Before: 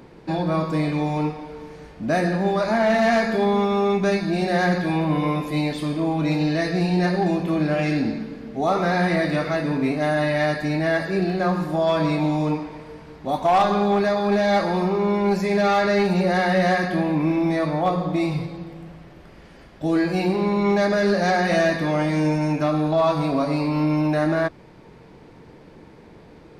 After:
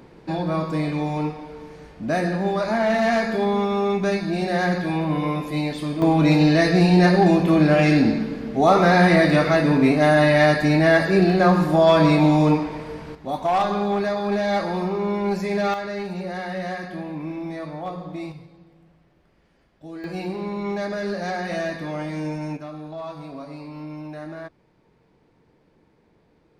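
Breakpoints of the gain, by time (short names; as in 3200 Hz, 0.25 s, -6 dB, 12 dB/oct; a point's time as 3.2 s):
-1.5 dB
from 6.02 s +5.5 dB
from 13.15 s -3 dB
from 15.74 s -10 dB
from 18.32 s -16 dB
from 20.04 s -7.5 dB
from 22.57 s -14.5 dB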